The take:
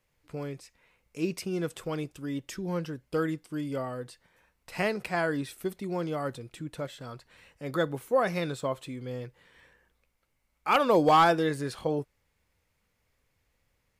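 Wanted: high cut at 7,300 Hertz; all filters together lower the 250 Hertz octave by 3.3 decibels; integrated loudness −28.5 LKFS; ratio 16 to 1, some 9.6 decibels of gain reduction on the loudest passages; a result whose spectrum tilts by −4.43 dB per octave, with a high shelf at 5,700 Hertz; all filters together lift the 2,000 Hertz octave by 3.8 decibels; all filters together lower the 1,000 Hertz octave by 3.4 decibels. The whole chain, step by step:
low-pass filter 7,300 Hz
parametric band 250 Hz −4.5 dB
parametric band 1,000 Hz −6.5 dB
parametric band 2,000 Hz +8 dB
high-shelf EQ 5,700 Hz −5.5 dB
downward compressor 16 to 1, threshold −28 dBFS
level +7.5 dB

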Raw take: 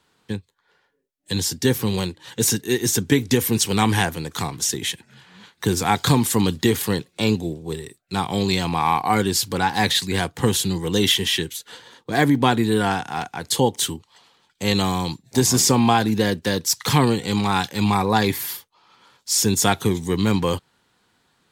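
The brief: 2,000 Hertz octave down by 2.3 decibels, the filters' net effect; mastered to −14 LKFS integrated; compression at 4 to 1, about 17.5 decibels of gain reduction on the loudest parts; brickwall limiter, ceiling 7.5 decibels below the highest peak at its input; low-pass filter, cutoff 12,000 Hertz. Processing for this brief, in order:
low-pass filter 12,000 Hz
parametric band 2,000 Hz −3 dB
downward compressor 4 to 1, threshold −35 dBFS
level +24 dB
brickwall limiter −3 dBFS

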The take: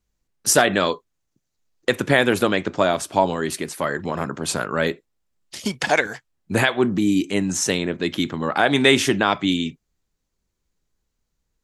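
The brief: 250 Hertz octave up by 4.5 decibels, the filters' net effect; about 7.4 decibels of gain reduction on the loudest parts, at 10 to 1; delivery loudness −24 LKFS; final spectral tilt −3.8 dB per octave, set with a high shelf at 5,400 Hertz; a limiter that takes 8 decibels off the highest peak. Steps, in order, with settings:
parametric band 250 Hz +5.5 dB
high-shelf EQ 5,400 Hz +6.5 dB
downward compressor 10 to 1, threshold −17 dBFS
level +1 dB
brickwall limiter −11.5 dBFS

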